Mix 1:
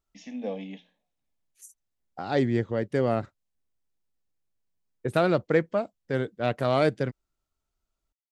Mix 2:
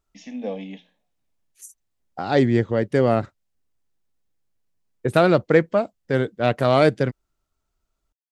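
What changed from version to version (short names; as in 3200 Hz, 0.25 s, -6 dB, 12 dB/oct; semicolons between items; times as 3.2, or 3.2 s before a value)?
first voice +3.5 dB; second voice +6.5 dB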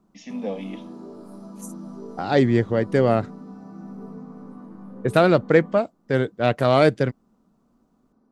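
background: unmuted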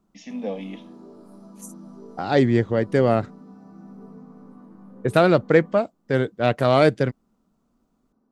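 background -5.0 dB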